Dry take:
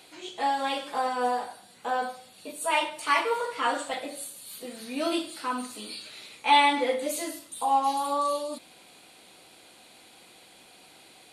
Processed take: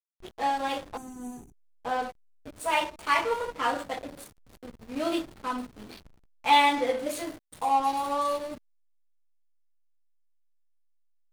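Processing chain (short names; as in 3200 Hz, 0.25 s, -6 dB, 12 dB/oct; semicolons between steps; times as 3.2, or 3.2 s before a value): backlash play -29.5 dBFS; spectral gain 0.97–1.75, 420–5800 Hz -22 dB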